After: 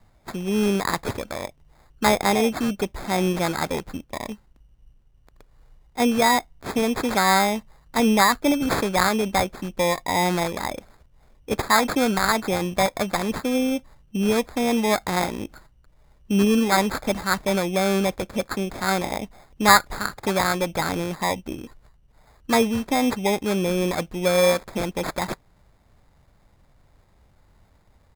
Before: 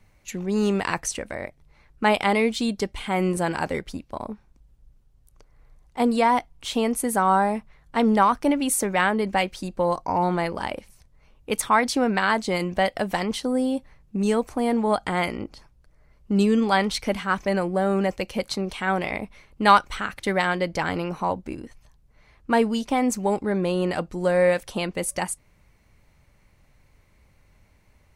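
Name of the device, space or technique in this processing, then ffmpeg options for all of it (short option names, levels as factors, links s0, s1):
crushed at another speed: -af "asetrate=35280,aresample=44100,acrusher=samples=19:mix=1:aa=0.000001,asetrate=55125,aresample=44100,volume=1.12"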